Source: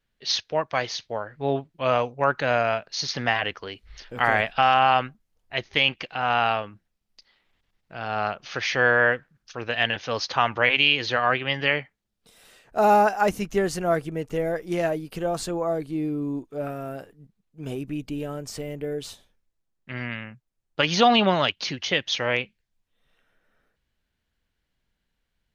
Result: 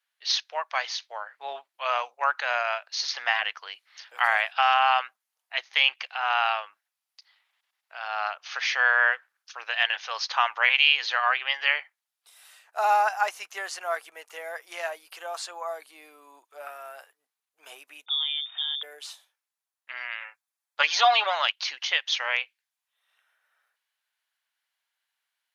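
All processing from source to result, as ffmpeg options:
ffmpeg -i in.wav -filter_complex "[0:a]asettb=1/sr,asplit=3[link_01][link_02][link_03];[link_01]atrim=end=18.064[link_04];[link_02]atrim=start=18.06:end=18.83,asetpts=PTS-STARTPTS,afade=type=in:duration=0.004:curve=qsin,afade=type=out:start_time=0.766:duration=0.004:curve=qsin,lowshelf=frequency=200:gain=7.5,lowpass=frequency=3100:width_type=q:width=0.5098,lowpass=frequency=3100:width_type=q:width=0.6013,lowpass=frequency=3100:width_type=q:width=0.9,lowpass=frequency=3100:width_type=q:width=2.563,afreqshift=-3700[link_05];[link_03]atrim=start=18.826[link_06];[link_04][link_05]acrossfade=duration=0.004:curve1=hsin:curve2=qsin[link_07];[link_07][link_06]acrossfade=duration=0.004:curve1=qsin:curve2=hsin,asettb=1/sr,asplit=3[link_08][link_09][link_10];[link_08]atrim=end=20.204[link_11];[link_09]atrim=start=20.2:end=21.35,asetpts=PTS-STARTPTS,afade=type=in:duration=0.004:curve=qsin,afade=type=out:start_time=1.146:duration=0.004:curve=qsin,bandreject=frequency=2900:width=13,aecho=1:1:7:0.68,atrim=end_sample=50715[link_12];[link_10]atrim=start=21.346[link_13];[link_11][link_12]acrossfade=duration=0.004:curve1=hsin:curve2=qsin[link_14];[link_14][link_13]acrossfade=duration=0.004:curve1=qsin:curve2=hsin,acrossover=split=7400[link_15][link_16];[link_16]acompressor=threshold=-56dB:ratio=4:attack=1:release=60[link_17];[link_15][link_17]amix=inputs=2:normalize=0,highpass=frequency=810:width=0.5412,highpass=frequency=810:width=1.3066,equalizer=frequency=11000:width_type=o:width=0.53:gain=6.5" out.wav

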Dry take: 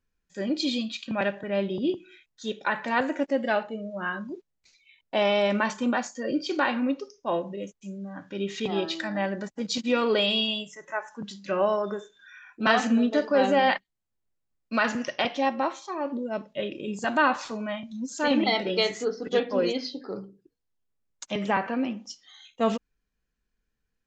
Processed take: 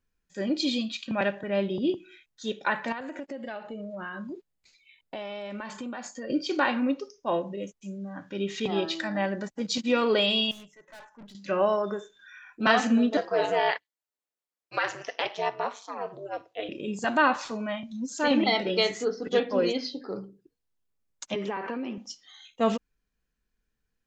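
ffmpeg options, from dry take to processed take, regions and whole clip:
ffmpeg -i in.wav -filter_complex "[0:a]asettb=1/sr,asplit=3[link_01][link_02][link_03];[link_01]atrim=end=2.924[link_04];[link_02]atrim=start=2.92:end=6.3,asetpts=PTS-STARTPTS,afade=type=in:duration=0.004:curve=qsin,afade=type=out:start_time=3.376:duration=0.004:curve=qsin,bandreject=frequency=5800:width=9,acompressor=threshold=-33dB:ratio=8:attack=3.2:release=140:knee=1:detection=peak[link_05];[link_03]atrim=start=6.296[link_06];[link_04][link_05]acrossfade=duration=0.004:curve1=hsin:curve2=qsin[link_07];[link_07][link_06]acrossfade=duration=0.004:curve1=qsin:curve2=hsin,asettb=1/sr,asplit=3[link_08][link_09][link_10];[link_08]atrim=end=10.514[link_11];[link_09]atrim=start=10.51:end=11.35,asetpts=PTS-STARTPTS,afade=type=in:duration=0.004:curve=qsin,afade=type=out:start_time=0.836:duration=0.004:curve=qsin,agate=range=-7dB:threshold=-41dB:ratio=16:release=100:detection=peak,highshelf=frequency=4400:gain=-12,aeval=exprs='(tanh(178*val(0)+0.3)-tanh(0.3))/178':channel_layout=same[link_12];[link_10]atrim=start=11.346[link_13];[link_11][link_12]acrossfade=duration=0.004:curve1=hsin:curve2=qsin[link_14];[link_14][link_13]acrossfade=duration=0.004:curve1=qsin:curve2=hsin,asettb=1/sr,asplit=3[link_15][link_16][link_17];[link_15]atrim=end=13.174[link_18];[link_16]atrim=start=13.17:end=16.69,asetpts=PTS-STARTPTS,afade=type=in:duration=0.004:curve=qsin,afade=type=out:start_time=3.516:duration=0.004:curve=qsin,highpass=frequency=390:width=0.5412,highpass=frequency=390:width=1.3066,aeval=exprs='val(0)*sin(2*PI*100*n/s)':channel_layout=same[link_19];[link_17]atrim=start=16.686[link_20];[link_18][link_19]acrossfade=duration=0.004:curve1=hsin:curve2=qsin[link_21];[link_21][link_20]acrossfade=duration=0.004:curve1=qsin:curve2=hsin,asettb=1/sr,asplit=3[link_22][link_23][link_24];[link_22]atrim=end=21.344[link_25];[link_23]atrim=start=21.34:end=21.98,asetpts=PTS-STARTPTS,afade=type=in:duration=0.004:curve=qsin,afade=type=out:start_time=0.636:duration=0.004:curve=qsin,acompressor=threshold=-29dB:ratio=12:attack=3.2:release=140:knee=1:detection=peak,highpass=180,equalizer=frequency=400:width_type=q:width=4:gain=9,equalizer=frequency=670:width_type=q:width=4:gain=-4,equalizer=frequency=1000:width_type=q:width=4:gain=4,lowpass=frequency=6500:width=0.5412,lowpass=frequency=6500:width=1.3066[link_26];[link_24]atrim=start=21.976[link_27];[link_25][link_26]acrossfade=duration=0.004:curve1=hsin:curve2=qsin[link_28];[link_28][link_27]acrossfade=duration=0.004:curve1=qsin:curve2=hsin" out.wav

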